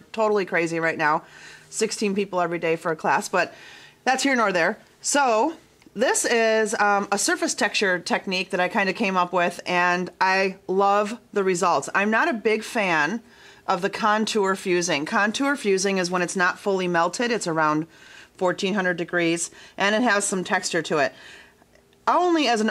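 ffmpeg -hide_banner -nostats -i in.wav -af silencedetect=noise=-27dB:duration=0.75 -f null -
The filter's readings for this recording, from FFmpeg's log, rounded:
silence_start: 21.08
silence_end: 22.07 | silence_duration: 1.00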